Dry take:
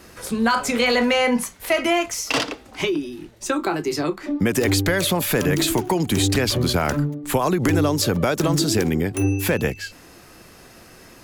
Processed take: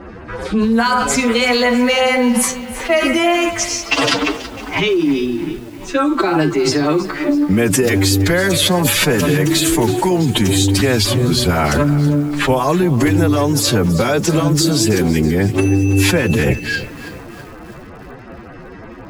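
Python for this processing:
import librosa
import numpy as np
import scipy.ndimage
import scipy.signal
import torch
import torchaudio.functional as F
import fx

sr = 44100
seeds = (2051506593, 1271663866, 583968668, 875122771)

p1 = fx.env_lowpass(x, sr, base_hz=1400.0, full_db=-15.5)
p2 = fx.over_compress(p1, sr, threshold_db=-26.0, ratio=-0.5)
p3 = p1 + (p2 * librosa.db_to_amplitude(1.0))
p4 = fx.filter_lfo_notch(p3, sr, shape='sine', hz=9.4, low_hz=520.0, high_hz=6000.0, q=1.6)
p5 = fx.stretch_vocoder(p4, sr, factor=1.7)
p6 = fx.echo_crushed(p5, sr, ms=327, feedback_pct=55, bits=6, wet_db=-14.5)
y = p6 * librosa.db_to_amplitude(4.0)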